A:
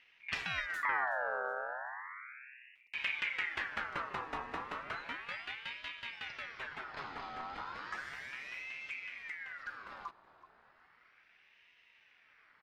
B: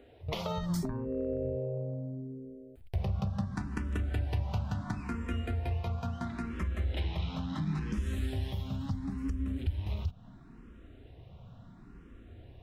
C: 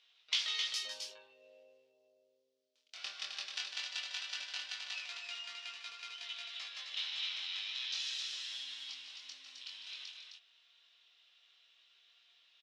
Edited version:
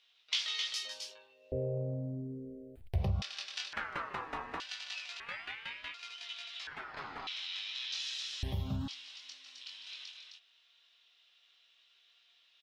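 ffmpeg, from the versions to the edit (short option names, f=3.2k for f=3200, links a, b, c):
-filter_complex "[1:a]asplit=2[a][b];[0:a]asplit=3[c][d][e];[2:a]asplit=6[f][g][h][i][j][k];[f]atrim=end=1.522[l];[a]atrim=start=1.518:end=3.222[m];[g]atrim=start=3.218:end=3.732[n];[c]atrim=start=3.728:end=4.602[o];[h]atrim=start=4.598:end=5.202[p];[d]atrim=start=5.198:end=5.942[q];[i]atrim=start=5.938:end=6.672[r];[e]atrim=start=6.668:end=7.272[s];[j]atrim=start=7.268:end=8.432[t];[b]atrim=start=8.428:end=8.882[u];[k]atrim=start=8.878[v];[l][m]acrossfade=d=0.004:c1=hsin:c2=hsin[w];[w][n]acrossfade=d=0.004:c1=hsin:c2=hsin[x];[x][o]acrossfade=d=0.004:c1=hsin:c2=hsin[y];[y][p]acrossfade=d=0.004:c1=hsin:c2=hsin[z];[z][q]acrossfade=d=0.004:c1=hsin:c2=hsin[aa];[aa][r]acrossfade=d=0.004:c1=hsin:c2=hsin[ab];[ab][s]acrossfade=d=0.004:c1=hsin:c2=hsin[ac];[ac][t]acrossfade=d=0.004:c1=hsin:c2=hsin[ad];[ad][u]acrossfade=d=0.004:c1=hsin:c2=hsin[ae];[ae][v]acrossfade=d=0.004:c1=hsin:c2=hsin"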